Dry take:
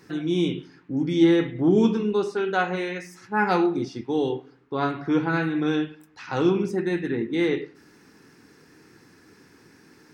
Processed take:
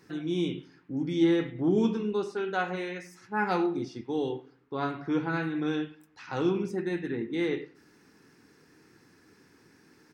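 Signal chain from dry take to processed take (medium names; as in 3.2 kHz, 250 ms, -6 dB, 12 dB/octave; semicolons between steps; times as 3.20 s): speakerphone echo 90 ms, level -20 dB; trim -6 dB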